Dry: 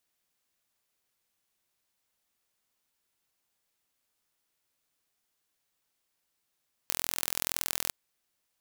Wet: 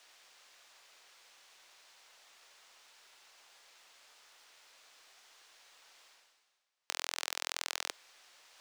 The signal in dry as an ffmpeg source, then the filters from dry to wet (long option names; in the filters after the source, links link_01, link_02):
-f lavfi -i "aevalsrc='0.891*eq(mod(n,1048),0)*(0.5+0.5*eq(mod(n,2096),0))':duration=1.01:sample_rate=44100"
-filter_complex "[0:a]aeval=exprs='if(lt(val(0),0),0.708*val(0),val(0))':channel_layout=same,acrossover=split=460 6900:gain=0.0708 1 0.112[link_01][link_02][link_03];[link_01][link_02][link_03]amix=inputs=3:normalize=0,areverse,acompressor=mode=upward:threshold=-41dB:ratio=2.5,areverse"